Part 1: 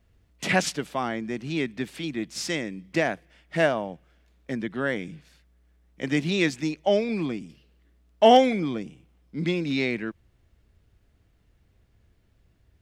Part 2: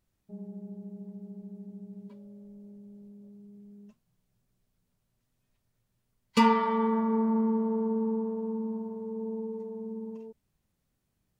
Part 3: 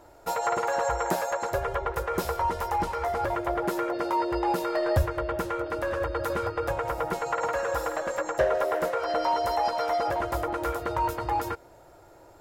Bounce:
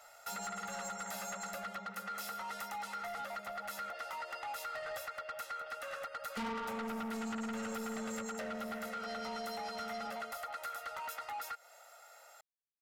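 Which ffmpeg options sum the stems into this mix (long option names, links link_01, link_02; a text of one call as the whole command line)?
ffmpeg -i stem1.wav -i stem2.wav -i stem3.wav -filter_complex "[1:a]volume=-9dB[link_01];[2:a]highpass=1400,aecho=1:1:1.5:0.84,acompressor=threshold=-39dB:ratio=5,volume=2dB[link_02];[link_01][link_02]amix=inputs=2:normalize=0,asoftclip=type=tanh:threshold=-36dB" out.wav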